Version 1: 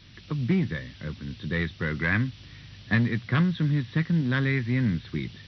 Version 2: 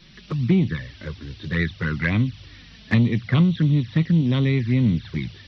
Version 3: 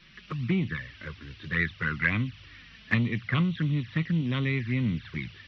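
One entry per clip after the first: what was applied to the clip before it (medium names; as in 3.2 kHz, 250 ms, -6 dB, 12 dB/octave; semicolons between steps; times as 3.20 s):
touch-sensitive flanger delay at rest 6 ms, full sweep at -21 dBFS; trim +6 dB
high-order bell 1.8 kHz +8.5 dB; trim -8.5 dB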